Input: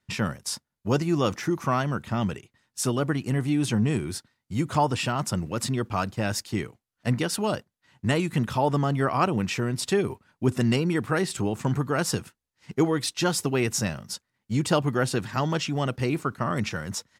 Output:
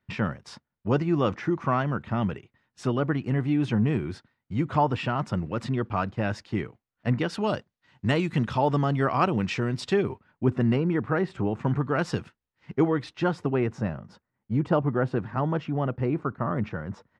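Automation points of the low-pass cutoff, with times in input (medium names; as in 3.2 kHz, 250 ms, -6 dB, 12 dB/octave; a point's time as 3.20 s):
7.14 s 2.5 kHz
7.55 s 4.4 kHz
9.74 s 4.4 kHz
10.63 s 1.7 kHz
11.36 s 1.7 kHz
12.19 s 3.3 kHz
13.82 s 1.3 kHz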